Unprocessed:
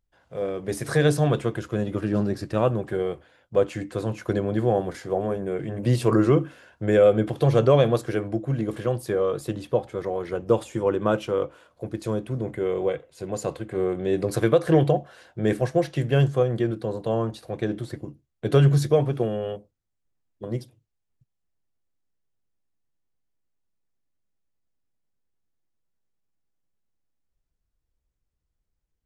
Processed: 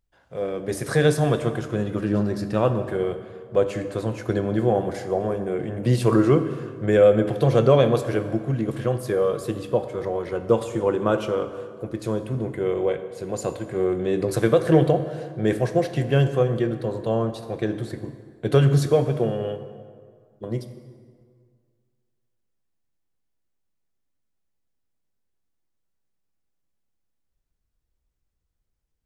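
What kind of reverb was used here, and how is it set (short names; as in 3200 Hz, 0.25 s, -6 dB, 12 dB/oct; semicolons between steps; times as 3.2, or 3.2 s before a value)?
plate-style reverb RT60 2 s, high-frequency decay 0.65×, DRR 9 dB; gain +1 dB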